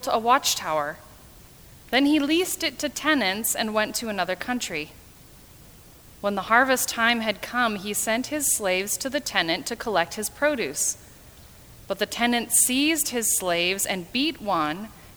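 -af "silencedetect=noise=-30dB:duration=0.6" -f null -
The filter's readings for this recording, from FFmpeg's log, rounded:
silence_start: 0.92
silence_end: 1.93 | silence_duration: 1.01
silence_start: 4.84
silence_end: 6.24 | silence_duration: 1.40
silence_start: 10.93
silence_end: 11.90 | silence_duration: 0.97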